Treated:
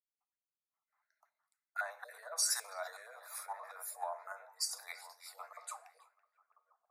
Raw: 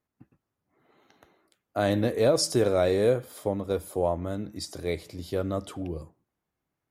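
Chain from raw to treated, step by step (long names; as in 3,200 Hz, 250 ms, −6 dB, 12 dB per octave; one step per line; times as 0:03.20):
time-frequency cells dropped at random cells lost 29%
on a send: echo through a band-pass that steps 331 ms, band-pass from 3,100 Hz, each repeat −0.7 octaves, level −9 dB
on the sum: feedback delay network reverb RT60 0.5 s, high-frequency decay 1×, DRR 11.5 dB
brickwall limiter −25.5 dBFS, peak gain reduction 14.5 dB
Butterworth high-pass 520 Hz 96 dB per octave
phaser with its sweep stopped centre 1,300 Hz, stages 4
multiband upward and downward expander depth 70%
level +2 dB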